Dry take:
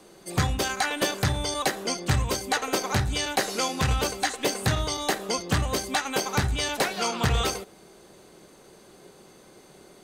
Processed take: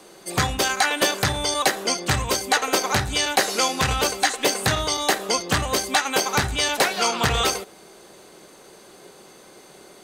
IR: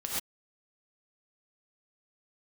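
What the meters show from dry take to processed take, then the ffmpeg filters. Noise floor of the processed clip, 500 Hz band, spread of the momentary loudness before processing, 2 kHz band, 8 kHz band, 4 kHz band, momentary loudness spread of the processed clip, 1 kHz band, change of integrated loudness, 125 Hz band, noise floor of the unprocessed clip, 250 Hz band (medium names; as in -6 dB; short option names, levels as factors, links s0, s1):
-48 dBFS, +4.5 dB, 2 LU, +6.5 dB, +6.5 dB, +6.5 dB, 3 LU, +5.5 dB, +5.0 dB, -1.5 dB, -53 dBFS, +1.5 dB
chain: -af "lowshelf=f=260:g=-9.5,volume=2.11"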